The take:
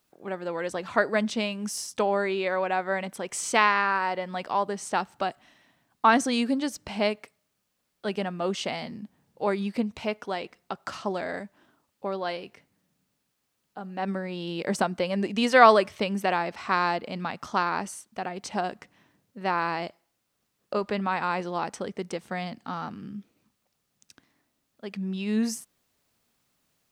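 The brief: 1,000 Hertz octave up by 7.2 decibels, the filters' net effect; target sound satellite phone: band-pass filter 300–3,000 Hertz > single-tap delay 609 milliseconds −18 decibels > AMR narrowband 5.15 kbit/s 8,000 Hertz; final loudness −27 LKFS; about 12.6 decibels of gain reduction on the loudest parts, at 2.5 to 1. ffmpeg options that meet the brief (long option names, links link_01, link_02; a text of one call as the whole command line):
ffmpeg -i in.wav -af "equalizer=frequency=1000:width_type=o:gain=9,acompressor=threshold=-23dB:ratio=2.5,highpass=300,lowpass=3000,aecho=1:1:609:0.126,volume=3.5dB" -ar 8000 -c:a libopencore_amrnb -b:a 5150 out.amr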